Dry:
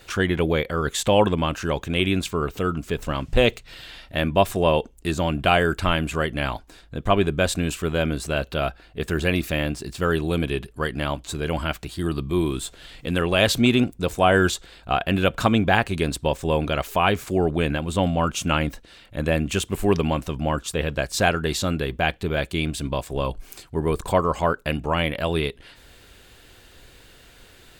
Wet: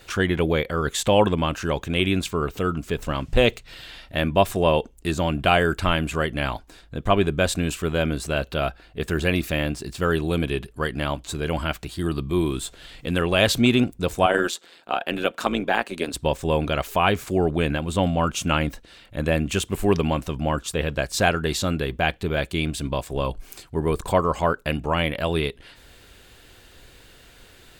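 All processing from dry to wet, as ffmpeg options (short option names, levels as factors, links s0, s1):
-filter_complex "[0:a]asettb=1/sr,asplit=3[s0][s1][s2];[s0]atrim=end=14.264[s3];[s1]atrim=start=14.26:end=16.14,asetpts=PTS-STARTPTS,afade=t=in:d=0.004:c=qsin,afade=t=out:st=1.876:d=0.004:c=qsin,highpass=f=230:w=0.5412,highpass=f=230:w=1.3066,tremolo=f=170:d=0.621[s4];[s2]atrim=start=16.136[s5];[s3][s4]acrossfade=d=0.004:c1=hsin:c2=qsin[s6];[s6][s5]acrossfade=d=0.004:c1=qsin:c2=hsin"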